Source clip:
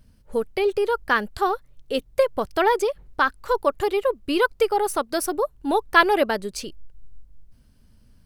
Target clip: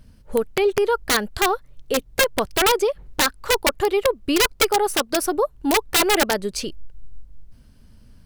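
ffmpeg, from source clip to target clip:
ffmpeg -i in.wav -filter_complex "[0:a]highshelf=frequency=8600:gain=-4,asplit=2[link_01][link_02];[link_02]acompressor=threshold=-27dB:ratio=12,volume=0dB[link_03];[link_01][link_03]amix=inputs=2:normalize=0,aeval=exprs='(mod(3.35*val(0)+1,2)-1)/3.35':channel_layout=same" out.wav

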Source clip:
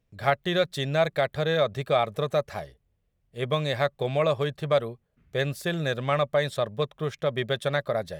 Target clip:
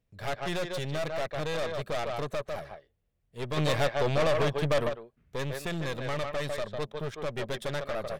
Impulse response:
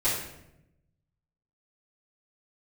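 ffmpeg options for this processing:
-filter_complex "[0:a]asplit=2[link_01][link_02];[link_02]adelay=150,highpass=300,lowpass=3400,asoftclip=type=hard:threshold=-18dB,volume=-6dB[link_03];[link_01][link_03]amix=inputs=2:normalize=0,aeval=exprs='(tanh(28.2*val(0)+0.7)-tanh(0.7))/28.2':channel_layout=same,asplit=3[link_04][link_05][link_06];[link_04]afade=type=out:start_time=3.56:duration=0.02[link_07];[link_05]acontrast=63,afade=type=in:start_time=3.56:duration=0.02,afade=type=out:start_time=4.88:duration=0.02[link_08];[link_06]afade=type=in:start_time=4.88:duration=0.02[link_09];[link_07][link_08][link_09]amix=inputs=3:normalize=0"

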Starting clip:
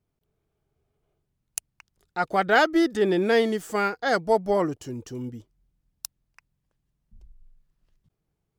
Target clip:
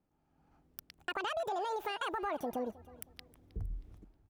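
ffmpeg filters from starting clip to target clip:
ffmpeg -i in.wav -af "tiltshelf=frequency=1400:gain=5.5,dynaudnorm=framelen=360:gausssize=5:maxgain=15.5dB,alimiter=limit=-13dB:level=0:latency=1,acompressor=threshold=-27dB:ratio=5,aecho=1:1:631|1262|1893:0.1|0.033|0.0109,asetrate=88200,aresample=44100,volume=-7dB" out.wav

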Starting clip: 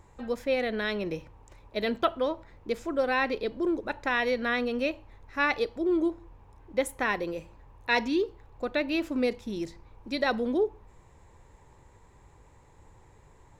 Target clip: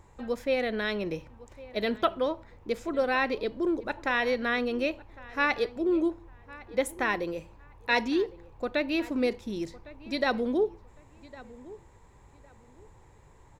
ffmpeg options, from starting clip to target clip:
ffmpeg -i in.wav -filter_complex "[0:a]asplit=2[link_01][link_02];[link_02]adelay=1107,lowpass=frequency=2600:poles=1,volume=-19.5dB,asplit=2[link_03][link_04];[link_04]adelay=1107,lowpass=frequency=2600:poles=1,volume=0.25[link_05];[link_01][link_03][link_05]amix=inputs=3:normalize=0" out.wav

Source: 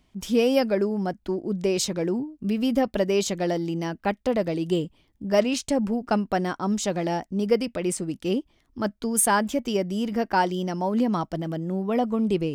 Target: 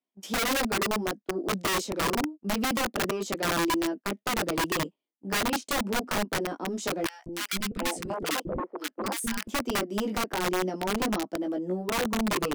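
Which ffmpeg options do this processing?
ffmpeg -i in.wav -filter_complex "[0:a]highpass=frequency=230:width=0.5412,highpass=frequency=230:width=1.3066,agate=range=-26dB:threshold=-37dB:ratio=16:detection=peak,equalizer=frequency=490:width_type=o:width=2.1:gain=5.5,acrossover=split=460[link_01][link_02];[link_02]acompressor=threshold=-37dB:ratio=2.5[link_03];[link_01][link_03]amix=inputs=2:normalize=0,asoftclip=type=tanh:threshold=-15.5dB,flanger=delay=15:depth=6.3:speed=0.27,aeval=exprs='(mod(15*val(0)+1,2)-1)/15':channel_layout=same,asettb=1/sr,asplit=3[link_04][link_05][link_06];[link_04]atrim=end=7.064[link_07];[link_05]atrim=start=7.06:end=9.48,asetpts=PTS-STARTPTS,afade=type=in:duration=0.004:curve=qsin,afade=type=out:start_time=2.416:duration=0.004:curve=qsin,acrossover=split=340|1200[link_08][link_09][link_10];[link_08]adelay=200[link_11];[link_09]adelay=730[link_12];[link_11][link_12][link_10]amix=inputs=3:normalize=0,atrim=end_sample=106722[link_13];[link_06]atrim=start=9.476[link_14];[link_07][link_13]acrossfade=duration=0.004:curve1=hsin:curve2=qsin[link_15];[link_15][link_14]acrossfade=duration=0.004:curve1=qsin:curve2=hsin,volume=1.5dB" out.wav

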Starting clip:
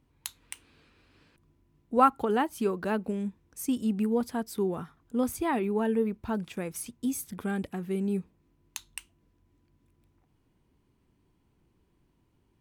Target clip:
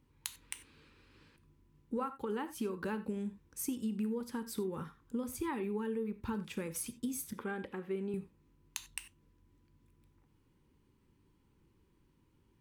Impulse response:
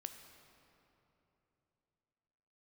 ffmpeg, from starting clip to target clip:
-filter_complex "[0:a]asettb=1/sr,asplit=3[link_01][link_02][link_03];[link_01]atrim=end=7.334[link_04];[link_02]atrim=start=7.33:end=8.14,asetpts=PTS-STARTPTS,afade=type=in:duration=0.004:curve=qsin,afade=type=out:start_time=0.806:duration=0.004:curve=qsin,bass=frequency=250:gain=-12,treble=frequency=4000:gain=-15[link_05];[link_03]atrim=start=8.136[link_06];[link_04][link_05]acrossfade=duration=0.004:curve1=hsin:curve2=qsin[link_07];[link_07][link_06]acrossfade=duration=0.004:curve1=qsin:curve2=hsin,acompressor=threshold=-32dB:ratio=16,asuperstop=centerf=680:order=4:qfactor=3.3[link_08];[1:a]atrim=start_sample=2205,atrim=end_sample=4410[link_09];[link_08][link_09]afir=irnorm=-1:irlink=0,volume=3.5dB"

